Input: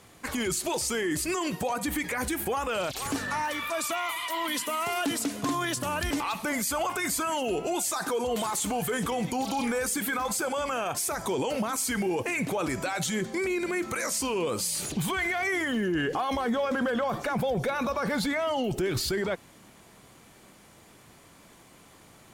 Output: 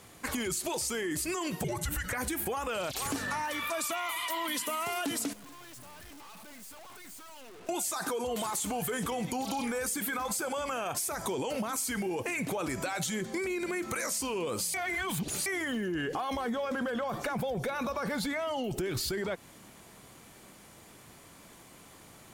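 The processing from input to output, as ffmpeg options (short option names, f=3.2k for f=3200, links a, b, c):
-filter_complex "[0:a]asettb=1/sr,asplit=3[a][b][c];[a]atrim=end=1.644[d];[b]atrim=start=1.64:end=2.13,asetpts=PTS-STARTPTS,afade=t=in:d=0.004:c=qsin,afade=t=out:st=0.486:d=0.004:c=qsin,afreqshift=-360[e];[c]atrim=start=2.126[f];[d][e]acrossfade=d=0.004:c1=hsin:c2=qsin[g];[g][f]acrossfade=d=0.004:c1=qsin:c2=hsin,asettb=1/sr,asplit=3[h][i][j];[h]atrim=end=5.334[k];[i]atrim=start=5.33:end=7.69,asetpts=PTS-STARTPTS,afade=t=in:d=0.004:c=qsin,afade=t=out:st=2.356:d=0.004:c=qsin,aeval=exprs='(tanh(316*val(0)+0.6)-tanh(0.6))/316':c=same[l];[j]atrim=start=7.686[m];[k][l]acrossfade=d=0.004:c1=hsin:c2=qsin[n];[n][m]acrossfade=d=0.004:c1=qsin:c2=hsin,asplit=3[o][p][q];[o]atrim=end=14.742[r];[p]atrim=start=14.738:end=15.462,asetpts=PTS-STARTPTS,areverse[s];[q]atrim=start=15.458[t];[r][s]acrossfade=d=0.004:c1=hsin:c2=hsin[u];[u][t]acrossfade=d=0.004:c1=hsin:c2=hsin,highshelf=f=8.5k:g=4.5,acompressor=threshold=-30dB:ratio=6"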